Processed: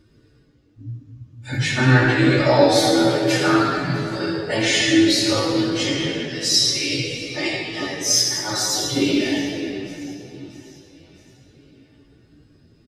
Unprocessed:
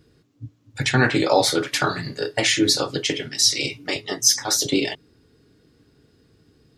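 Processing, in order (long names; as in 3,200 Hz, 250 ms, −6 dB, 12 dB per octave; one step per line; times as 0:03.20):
high-shelf EQ 10,000 Hz −7.5 dB
on a send: repeating echo 340 ms, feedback 52%, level −20.5 dB
on the sum: rectangular room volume 1,500 cubic metres, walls mixed, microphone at 2.6 metres
time stretch by phase vocoder 1.9×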